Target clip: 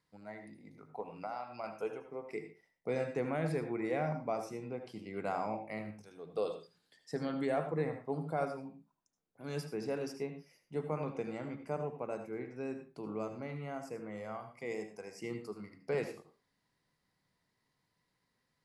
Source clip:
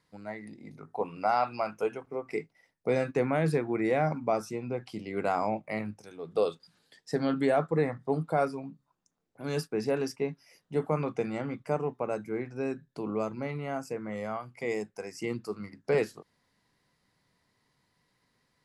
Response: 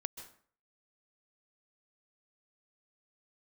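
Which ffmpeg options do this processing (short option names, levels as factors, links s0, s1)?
-filter_complex "[0:a]asettb=1/sr,asplit=3[s0][s1][s2];[s0]atrim=end=1.004[s3];[s1]atrim=start=1:end=1.64,asetpts=PTS-STARTPTS,afade=t=in:d=0.004:c=qsin,afade=t=out:st=0.636:d=0.004:c=qsin,acompressor=threshold=0.0282:ratio=4[s4];[s2]atrim=start=1.636[s5];[s3][s4]acrossfade=d=0.004:c1=hsin:c2=qsin[s6];[s6][s5]acrossfade=d=0.004:c1=qsin:c2=hsin[s7];[1:a]atrim=start_sample=2205,asetrate=79380,aresample=44100[s8];[s7][s8]afir=irnorm=-1:irlink=0,volume=0.891"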